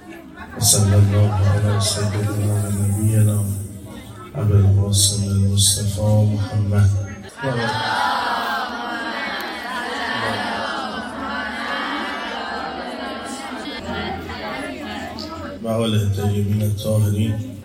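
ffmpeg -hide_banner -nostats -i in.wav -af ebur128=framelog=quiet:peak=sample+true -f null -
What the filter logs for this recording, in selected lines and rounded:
Integrated loudness:
  I:         -20.2 LUFS
  Threshold: -30.4 LUFS
Loudness range:
  LRA:         8.7 LU
  Threshold: -40.8 LUFS
  LRA low:   -26.2 LUFS
  LRA high:  -17.5 LUFS
Sample peak:
  Peak:       -1.5 dBFS
True peak:
  Peak:       -0.6 dBFS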